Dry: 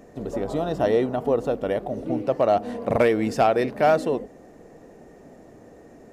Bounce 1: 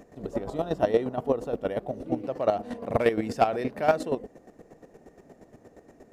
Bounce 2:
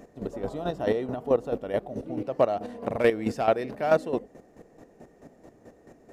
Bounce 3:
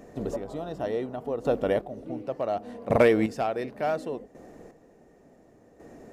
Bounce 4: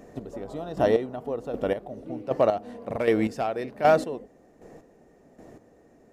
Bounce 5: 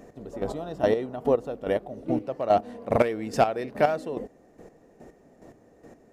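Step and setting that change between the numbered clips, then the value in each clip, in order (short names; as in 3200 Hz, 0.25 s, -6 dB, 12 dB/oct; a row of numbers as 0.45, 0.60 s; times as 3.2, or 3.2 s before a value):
chopper, rate: 8.5, 4.6, 0.69, 1.3, 2.4 Hz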